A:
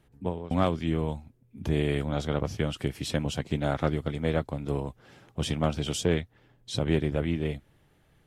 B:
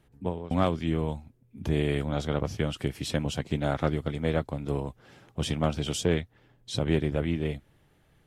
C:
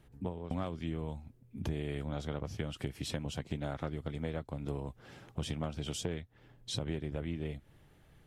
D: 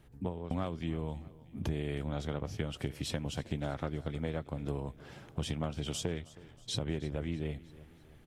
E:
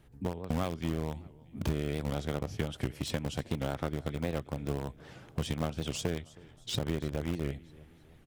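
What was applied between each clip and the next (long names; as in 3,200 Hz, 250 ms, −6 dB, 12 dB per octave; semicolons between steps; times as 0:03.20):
no processing that can be heard
downward compressor 4 to 1, threshold −36 dBFS, peak gain reduction 14.5 dB; low-shelf EQ 120 Hz +4 dB
repeating echo 318 ms, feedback 50%, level −19.5 dB; level +1.5 dB
in parallel at −8.5 dB: bit reduction 5 bits; on the sum: wow of a warped record 78 rpm, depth 160 cents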